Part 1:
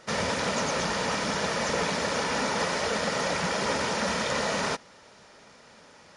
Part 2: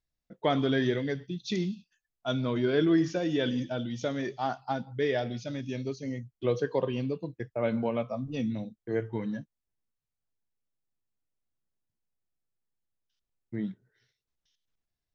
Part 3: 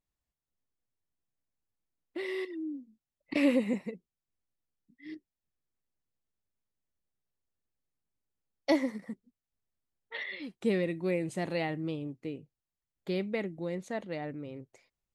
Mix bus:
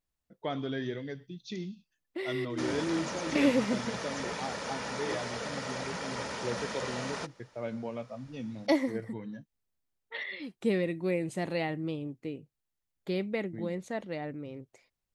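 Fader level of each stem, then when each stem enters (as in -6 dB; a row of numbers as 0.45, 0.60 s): -9.5, -8.0, +0.5 dB; 2.50, 0.00, 0.00 s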